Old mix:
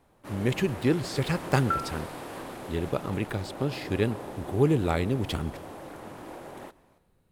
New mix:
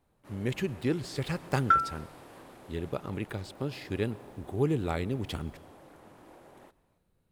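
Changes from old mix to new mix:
speech -5.0 dB; first sound -11.5 dB; second sound: remove band-pass 480 Hz, Q 0.66

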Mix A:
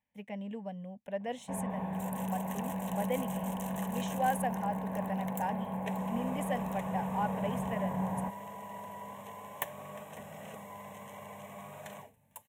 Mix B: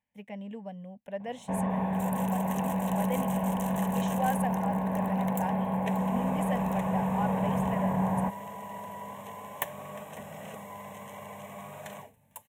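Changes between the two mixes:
first sound +7.0 dB; second sound +3.5 dB

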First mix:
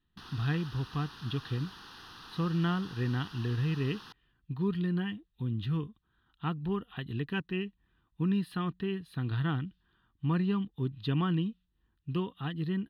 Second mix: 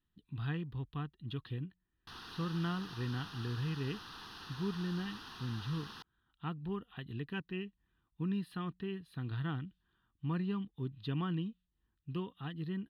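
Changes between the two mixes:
speech -6.5 dB; background: entry +1.90 s

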